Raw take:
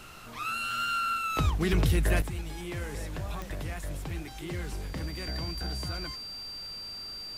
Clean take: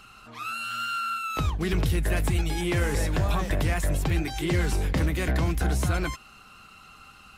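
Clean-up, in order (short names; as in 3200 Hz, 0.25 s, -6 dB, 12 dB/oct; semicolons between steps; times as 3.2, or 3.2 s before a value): de-click; notch 4700 Hz, Q 30; noise print and reduce 9 dB; gain 0 dB, from 2.22 s +11 dB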